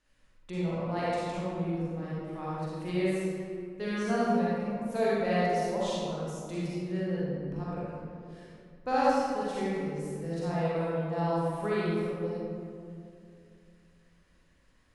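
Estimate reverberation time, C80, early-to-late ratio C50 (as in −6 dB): 2.4 s, −2.5 dB, −6.0 dB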